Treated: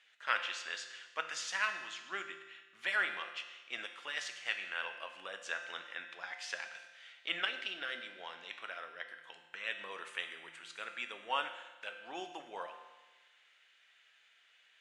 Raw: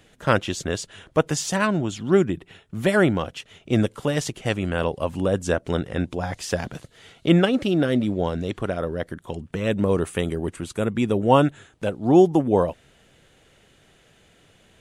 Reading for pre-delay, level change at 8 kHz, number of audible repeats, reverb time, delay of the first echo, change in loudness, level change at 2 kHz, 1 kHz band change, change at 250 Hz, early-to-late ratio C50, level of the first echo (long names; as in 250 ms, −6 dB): 6 ms, −15.0 dB, no echo audible, 1.2 s, no echo audible, −16.5 dB, −6.0 dB, −14.0 dB, −37.0 dB, 8.0 dB, no echo audible